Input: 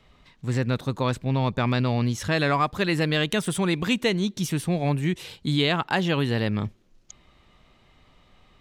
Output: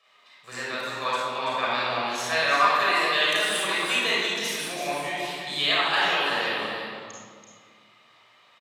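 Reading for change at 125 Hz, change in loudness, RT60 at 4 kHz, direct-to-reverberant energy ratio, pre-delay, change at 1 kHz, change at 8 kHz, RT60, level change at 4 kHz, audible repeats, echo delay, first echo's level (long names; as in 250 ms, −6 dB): −21.5 dB, +1.0 dB, 1.4 s, −7.0 dB, 31 ms, +4.5 dB, +3.0 dB, 1.9 s, +5.5 dB, 1, 335 ms, −7.0 dB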